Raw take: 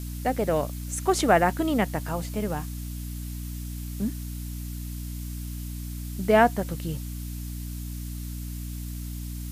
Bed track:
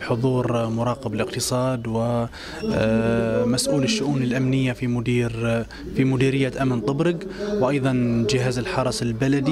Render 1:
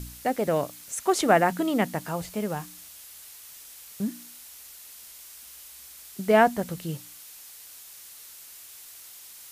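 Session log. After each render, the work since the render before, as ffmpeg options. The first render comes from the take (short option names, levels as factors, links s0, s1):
-af "bandreject=f=60:t=h:w=4,bandreject=f=120:t=h:w=4,bandreject=f=180:t=h:w=4,bandreject=f=240:t=h:w=4,bandreject=f=300:t=h:w=4"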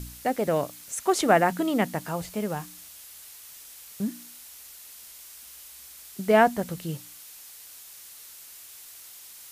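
-af anull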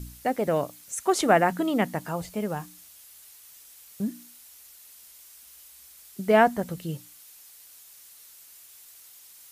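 -af "afftdn=nr=6:nf=-47"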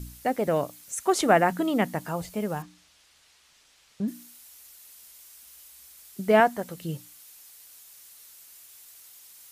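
-filter_complex "[0:a]asettb=1/sr,asplit=3[s0][s1][s2];[s0]atrim=end=2.624[s3];[s1]atrim=start=2.62:end=4.08,asetpts=PTS-STARTPTS,afade=t=in:d=0.004:c=qsin,afade=t=out:st=1.456:d=0.004:c=qsin,lowpass=4600[s4];[s2]atrim=start=4.076[s5];[s3][s4]acrossfade=d=0.004:c1=hsin:c2=qsin[s6];[s6][s5]acrossfade=d=0.004:c1=qsin:c2=hsin,asettb=1/sr,asplit=3[s7][s8][s9];[s7]atrim=end=6.404[s10];[s8]atrim=start=6.4:end=6.81,asetpts=PTS-STARTPTS,afade=t=in:d=0.004:c=qsin,afade=t=out:st=0.406:d=0.004:c=qsin,lowshelf=f=200:g=-12[s11];[s9]atrim=start=6.806[s12];[s10][s11]acrossfade=d=0.004:c1=hsin:c2=qsin[s13];[s13][s12]acrossfade=d=0.004:c1=qsin:c2=hsin"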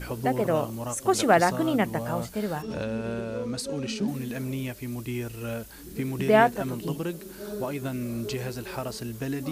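-filter_complex "[1:a]volume=0.282[s0];[0:a][s0]amix=inputs=2:normalize=0"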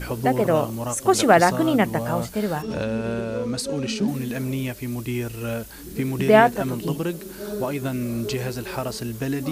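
-af "volume=1.78,alimiter=limit=0.708:level=0:latency=1"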